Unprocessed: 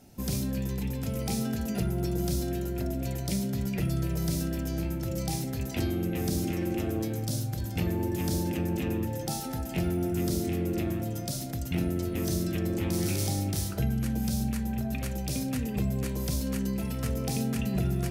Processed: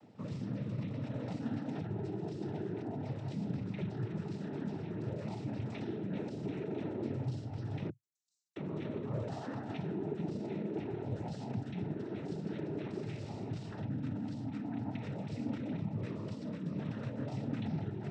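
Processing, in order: 7.89–8.56 inverse Chebyshev high-pass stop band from 2000 Hz, stop band 80 dB; limiter -28 dBFS, peak gain reduction 11 dB; air absorption 290 m; noise vocoder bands 12; gain -1 dB

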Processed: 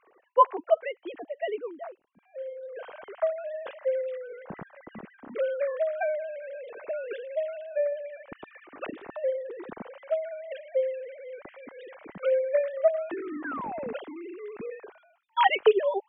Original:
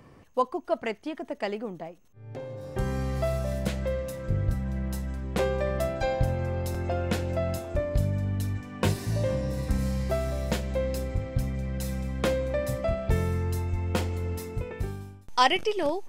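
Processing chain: sine-wave speech; painted sound fall, 13.44–13.93, 410–1700 Hz -33 dBFS; gain -2 dB

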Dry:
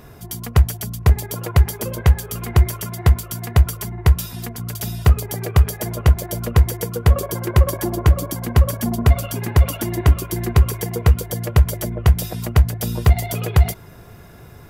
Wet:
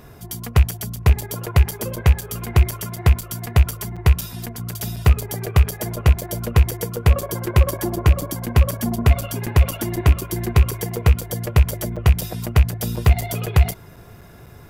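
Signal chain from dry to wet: rattling part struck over -12 dBFS, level -16 dBFS; crackling interface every 0.25 s, samples 256, zero, from 0.71; gain -1 dB

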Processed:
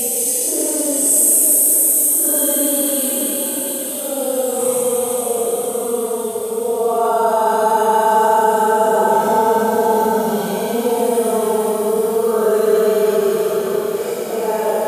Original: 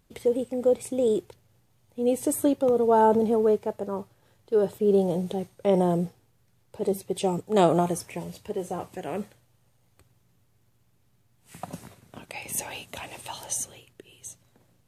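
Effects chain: spectral trails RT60 0.86 s; RIAA curve recording; on a send: delay with a stepping band-pass 0.117 s, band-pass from 1200 Hz, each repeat 1.4 oct, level -9 dB; on the sum: AGC gain up to 6 dB; Paulstretch 9.9×, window 0.05 s, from 2.21; in parallel at -1.5 dB: limiter -12.5 dBFS, peak gain reduction 10 dB; on the sum: gain -1.5 dB

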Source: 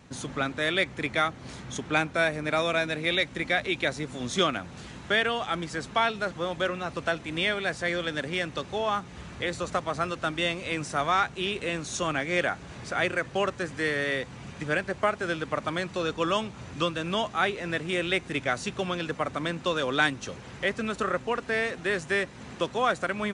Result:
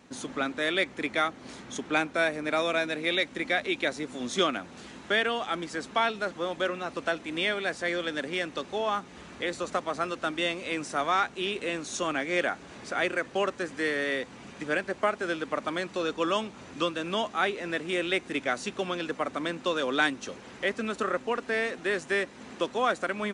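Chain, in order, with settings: resonant low shelf 180 Hz -9 dB, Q 1.5; gain -1.5 dB

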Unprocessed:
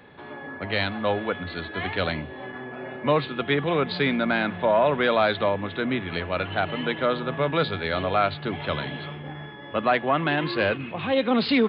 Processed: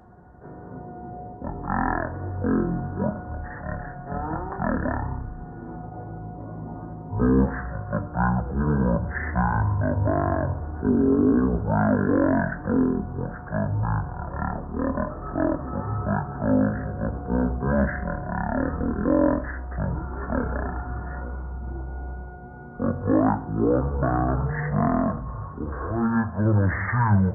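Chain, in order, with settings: on a send at -11 dB: reverb RT60 0.30 s, pre-delay 5 ms; on the sum: speed mistake 78 rpm record played at 33 rpm

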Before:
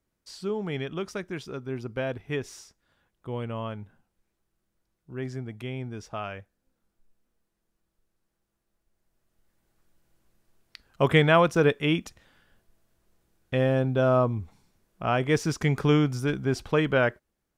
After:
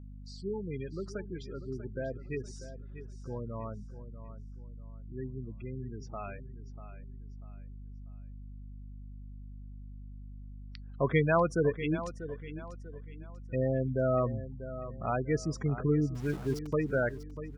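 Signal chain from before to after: spectral gate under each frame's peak -15 dB strong; 16.15–16.73 sample gate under -36.5 dBFS; hum 50 Hz, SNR 11 dB; on a send: feedback echo 0.642 s, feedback 35%, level -13 dB; on the sum: gain -6 dB

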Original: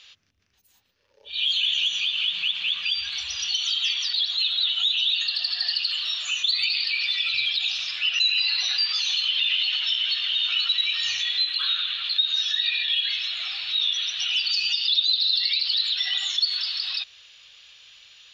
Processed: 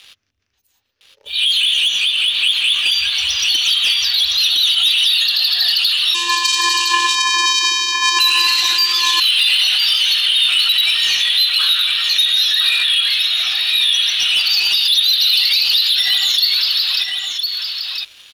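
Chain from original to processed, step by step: bell 170 Hz -13.5 dB 0.3 oct; sample leveller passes 2; 6.14–8.19 vocoder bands 4, square 346 Hz; echo 1.01 s -5 dB; gain +3 dB

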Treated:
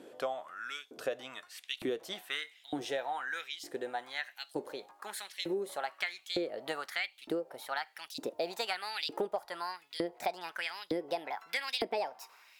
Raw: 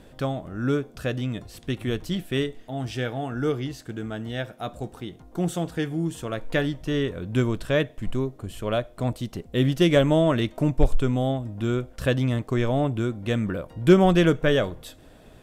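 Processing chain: speed glide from 96% -> 149%; LFO high-pass saw up 1.1 Hz 310–3800 Hz; compressor 6:1, threshold -27 dBFS, peak gain reduction 13.5 dB; gain -4 dB

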